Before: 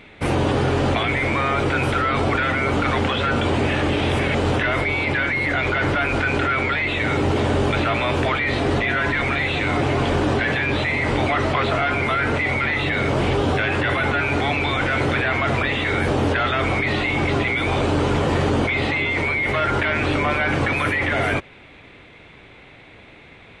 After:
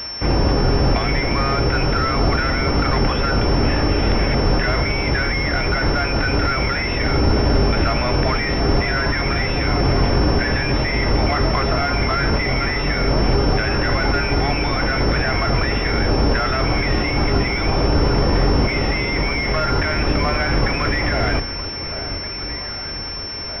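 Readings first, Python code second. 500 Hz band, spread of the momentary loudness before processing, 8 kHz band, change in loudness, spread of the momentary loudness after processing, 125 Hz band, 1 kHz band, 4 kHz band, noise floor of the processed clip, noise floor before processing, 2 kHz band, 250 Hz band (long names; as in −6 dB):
+0.5 dB, 1 LU, can't be measured, +1.0 dB, 2 LU, +3.5 dB, +0.5 dB, +5.5 dB, −28 dBFS, −46 dBFS, −1.5 dB, +1.5 dB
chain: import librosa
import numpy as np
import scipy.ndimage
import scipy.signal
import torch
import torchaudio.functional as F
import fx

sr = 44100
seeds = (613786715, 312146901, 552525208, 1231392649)

y = fx.octave_divider(x, sr, octaves=2, level_db=4.0)
y = fx.quant_dither(y, sr, seeds[0], bits=6, dither='triangular')
y = fx.echo_alternate(y, sr, ms=786, hz=1300.0, feedback_pct=77, wet_db=-11.5)
y = fx.pwm(y, sr, carrier_hz=5400.0)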